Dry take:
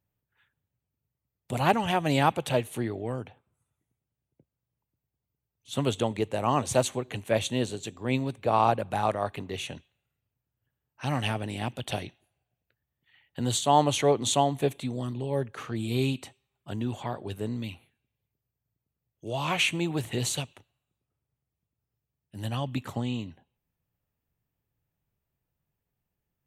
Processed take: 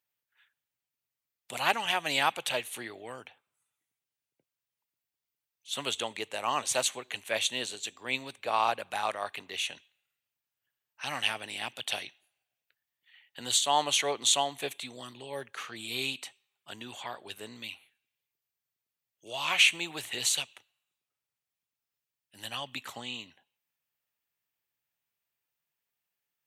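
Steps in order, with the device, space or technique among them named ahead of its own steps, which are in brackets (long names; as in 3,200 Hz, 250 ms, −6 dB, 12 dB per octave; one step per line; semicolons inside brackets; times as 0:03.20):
filter by subtraction (in parallel: low-pass filter 2,700 Hz 12 dB per octave + polarity inversion)
on the sum: level +2.5 dB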